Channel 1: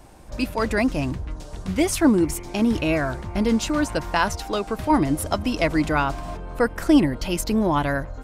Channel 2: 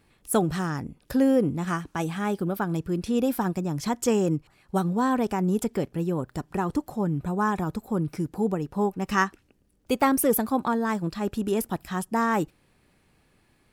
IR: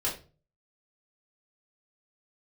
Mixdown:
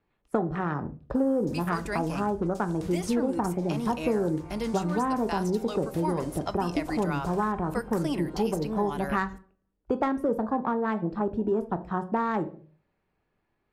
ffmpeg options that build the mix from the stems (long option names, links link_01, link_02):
-filter_complex "[0:a]highshelf=frequency=4000:gain=11,adelay=1150,volume=-12.5dB,asplit=2[link_01][link_02];[link_02]volume=-21.5dB[link_03];[1:a]afwtdn=0.02,adynamicsmooth=sensitivity=1:basefreq=3700,volume=1dB,asplit=2[link_04][link_05];[link_05]volume=-13.5dB[link_06];[2:a]atrim=start_sample=2205[link_07];[link_03][link_06]amix=inputs=2:normalize=0[link_08];[link_08][link_07]afir=irnorm=-1:irlink=0[link_09];[link_01][link_04][link_09]amix=inputs=3:normalize=0,equalizer=frequency=870:width=0.55:gain=5,acrossover=split=250|5200[link_10][link_11][link_12];[link_10]acompressor=threshold=-32dB:ratio=4[link_13];[link_11]acompressor=threshold=-27dB:ratio=4[link_14];[link_12]acompressor=threshold=-48dB:ratio=4[link_15];[link_13][link_14][link_15]amix=inputs=3:normalize=0"